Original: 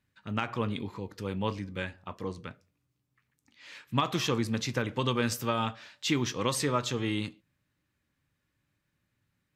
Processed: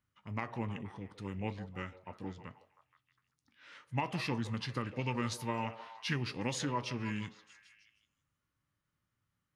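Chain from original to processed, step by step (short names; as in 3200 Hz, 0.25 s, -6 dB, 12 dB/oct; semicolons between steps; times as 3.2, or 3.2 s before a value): formant shift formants -4 st; delay with a stepping band-pass 0.158 s, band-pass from 570 Hz, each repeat 0.7 oct, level -9.5 dB; gain -6.5 dB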